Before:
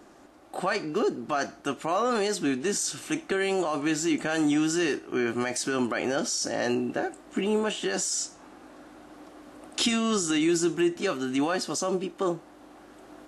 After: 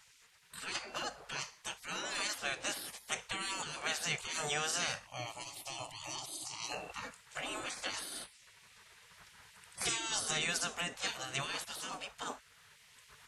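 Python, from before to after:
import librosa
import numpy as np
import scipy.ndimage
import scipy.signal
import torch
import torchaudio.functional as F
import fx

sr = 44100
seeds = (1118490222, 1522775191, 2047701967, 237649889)

y = fx.spec_gate(x, sr, threshold_db=-20, keep='weak')
y = fx.fixed_phaser(y, sr, hz=310.0, stages=8, at=(5.07, 6.72))
y = F.gain(torch.from_numpy(y), 1.5).numpy()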